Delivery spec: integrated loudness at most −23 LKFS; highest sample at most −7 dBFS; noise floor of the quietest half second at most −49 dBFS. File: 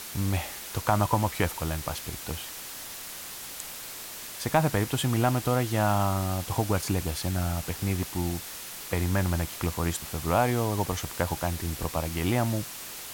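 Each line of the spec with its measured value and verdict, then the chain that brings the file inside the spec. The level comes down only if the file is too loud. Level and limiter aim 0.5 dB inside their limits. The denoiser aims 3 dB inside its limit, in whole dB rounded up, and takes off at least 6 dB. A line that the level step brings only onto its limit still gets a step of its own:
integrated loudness −29.0 LKFS: in spec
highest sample −9.0 dBFS: in spec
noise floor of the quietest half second −40 dBFS: out of spec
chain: broadband denoise 12 dB, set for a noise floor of −40 dBFS

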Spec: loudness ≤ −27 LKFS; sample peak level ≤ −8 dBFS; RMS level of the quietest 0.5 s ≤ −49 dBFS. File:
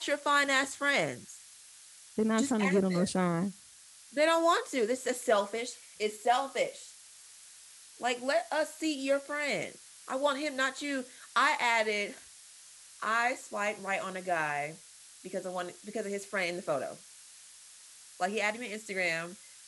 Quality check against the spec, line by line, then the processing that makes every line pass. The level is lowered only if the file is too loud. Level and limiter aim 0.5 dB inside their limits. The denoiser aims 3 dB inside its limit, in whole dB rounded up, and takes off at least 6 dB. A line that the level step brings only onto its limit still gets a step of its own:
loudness −31.0 LKFS: in spec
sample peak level −13.5 dBFS: in spec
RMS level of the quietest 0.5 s −55 dBFS: in spec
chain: no processing needed

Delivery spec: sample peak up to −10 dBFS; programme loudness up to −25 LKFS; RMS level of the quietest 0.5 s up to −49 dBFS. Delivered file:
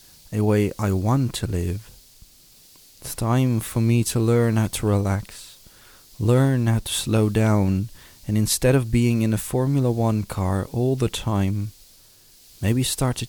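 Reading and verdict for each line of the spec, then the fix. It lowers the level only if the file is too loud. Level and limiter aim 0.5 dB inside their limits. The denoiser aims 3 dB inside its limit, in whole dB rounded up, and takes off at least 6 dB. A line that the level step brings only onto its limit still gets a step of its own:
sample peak −6.0 dBFS: out of spec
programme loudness −22.0 LKFS: out of spec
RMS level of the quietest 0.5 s −52 dBFS: in spec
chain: level −3.5 dB
brickwall limiter −10.5 dBFS

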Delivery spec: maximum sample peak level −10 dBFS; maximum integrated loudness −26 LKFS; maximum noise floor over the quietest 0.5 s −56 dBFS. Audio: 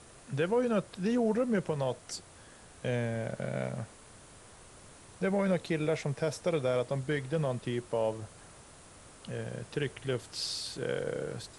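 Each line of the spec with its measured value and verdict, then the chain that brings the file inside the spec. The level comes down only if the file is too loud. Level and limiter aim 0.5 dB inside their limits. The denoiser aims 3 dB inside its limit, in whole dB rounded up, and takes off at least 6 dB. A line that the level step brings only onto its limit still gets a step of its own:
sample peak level −18.5 dBFS: in spec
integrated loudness −33.0 LKFS: in spec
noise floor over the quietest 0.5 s −54 dBFS: out of spec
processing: broadband denoise 6 dB, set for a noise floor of −54 dBFS

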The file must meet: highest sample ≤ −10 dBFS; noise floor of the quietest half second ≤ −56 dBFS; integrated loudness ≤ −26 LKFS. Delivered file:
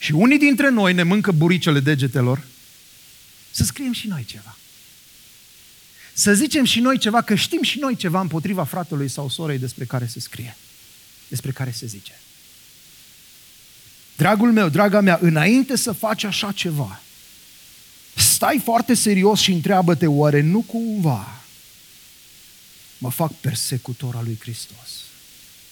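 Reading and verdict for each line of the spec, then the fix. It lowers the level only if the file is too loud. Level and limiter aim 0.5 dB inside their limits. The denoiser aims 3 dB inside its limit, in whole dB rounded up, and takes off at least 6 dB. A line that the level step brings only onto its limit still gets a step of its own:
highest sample −2.0 dBFS: out of spec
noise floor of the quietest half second −48 dBFS: out of spec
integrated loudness −18.5 LKFS: out of spec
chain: broadband denoise 6 dB, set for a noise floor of −48 dBFS
level −8 dB
brickwall limiter −10.5 dBFS

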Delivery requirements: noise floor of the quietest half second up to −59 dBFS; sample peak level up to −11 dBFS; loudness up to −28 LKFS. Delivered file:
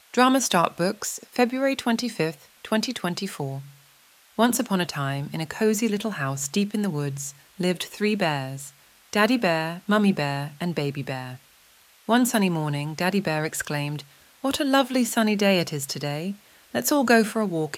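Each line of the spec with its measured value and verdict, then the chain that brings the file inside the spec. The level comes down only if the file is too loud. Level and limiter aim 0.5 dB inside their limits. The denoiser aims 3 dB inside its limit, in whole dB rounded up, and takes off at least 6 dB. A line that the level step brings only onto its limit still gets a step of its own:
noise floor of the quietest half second −56 dBFS: out of spec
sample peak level −4.0 dBFS: out of spec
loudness −24.5 LKFS: out of spec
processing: level −4 dB
brickwall limiter −11.5 dBFS

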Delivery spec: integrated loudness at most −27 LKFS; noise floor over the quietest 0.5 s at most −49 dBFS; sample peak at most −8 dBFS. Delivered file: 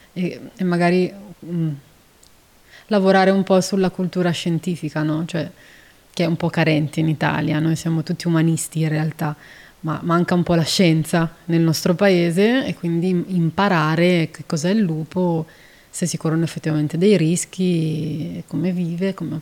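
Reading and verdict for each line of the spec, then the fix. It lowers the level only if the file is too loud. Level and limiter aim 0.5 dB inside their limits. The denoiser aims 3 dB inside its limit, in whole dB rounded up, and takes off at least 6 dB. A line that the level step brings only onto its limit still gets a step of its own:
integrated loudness −19.5 LKFS: out of spec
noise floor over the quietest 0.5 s −51 dBFS: in spec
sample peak −4.5 dBFS: out of spec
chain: level −8 dB

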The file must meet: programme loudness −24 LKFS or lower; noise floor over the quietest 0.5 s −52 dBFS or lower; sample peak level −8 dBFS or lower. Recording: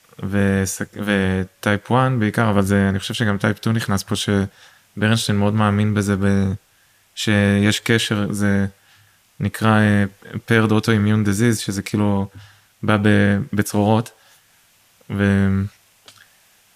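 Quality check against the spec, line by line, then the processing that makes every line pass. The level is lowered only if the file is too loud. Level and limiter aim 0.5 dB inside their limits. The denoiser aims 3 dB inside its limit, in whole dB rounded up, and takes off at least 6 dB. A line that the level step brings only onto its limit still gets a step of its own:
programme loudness −19.0 LKFS: out of spec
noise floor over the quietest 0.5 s −57 dBFS: in spec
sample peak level −3.5 dBFS: out of spec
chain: level −5.5 dB

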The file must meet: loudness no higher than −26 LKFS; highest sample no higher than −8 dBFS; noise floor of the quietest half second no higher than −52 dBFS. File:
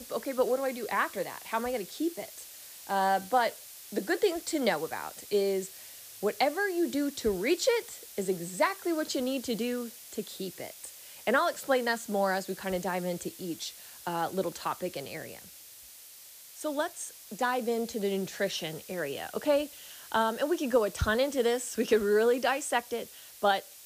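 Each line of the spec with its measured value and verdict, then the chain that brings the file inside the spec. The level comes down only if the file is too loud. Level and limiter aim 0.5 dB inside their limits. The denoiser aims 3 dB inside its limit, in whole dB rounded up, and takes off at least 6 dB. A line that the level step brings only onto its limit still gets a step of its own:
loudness −30.5 LKFS: in spec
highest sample −14.0 dBFS: in spec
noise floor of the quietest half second −51 dBFS: out of spec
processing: broadband denoise 6 dB, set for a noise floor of −51 dBFS

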